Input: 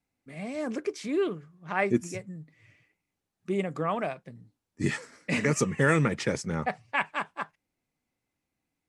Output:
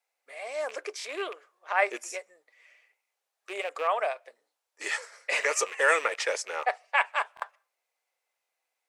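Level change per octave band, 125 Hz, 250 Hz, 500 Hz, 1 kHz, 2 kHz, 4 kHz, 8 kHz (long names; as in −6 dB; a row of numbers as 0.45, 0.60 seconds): below −40 dB, −20.5 dB, −1.0 dB, +3.5 dB, +3.5 dB, +4.0 dB, +3.5 dB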